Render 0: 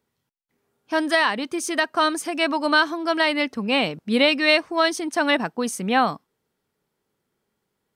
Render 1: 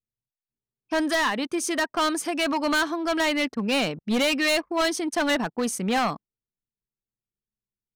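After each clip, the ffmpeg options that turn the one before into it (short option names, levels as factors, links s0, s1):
-af "volume=9.44,asoftclip=hard,volume=0.106,anlmdn=0.158"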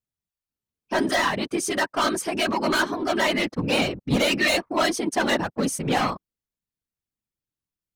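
-af "afftfilt=real='hypot(re,im)*cos(2*PI*random(0))':imag='hypot(re,im)*sin(2*PI*random(1))':win_size=512:overlap=0.75,volume=2.24"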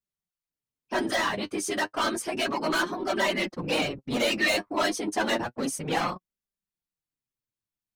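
-filter_complex "[0:a]flanger=delay=5.1:depth=4.9:regen=34:speed=0.31:shape=sinusoidal,acrossover=split=260|2500[s0][s1][s2];[s0]asoftclip=type=tanh:threshold=0.0168[s3];[s3][s1][s2]amix=inputs=3:normalize=0"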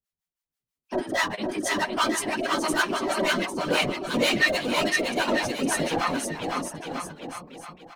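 -filter_complex "[0:a]acrossover=split=670[s0][s1];[s0]aeval=exprs='val(0)*(1-1/2+1/2*cos(2*PI*6.2*n/s))':c=same[s2];[s1]aeval=exprs='val(0)*(1-1/2-1/2*cos(2*PI*6.2*n/s))':c=same[s3];[s2][s3]amix=inputs=2:normalize=0,aecho=1:1:510|943.5|1312|1625|1891:0.631|0.398|0.251|0.158|0.1,volume=1.88"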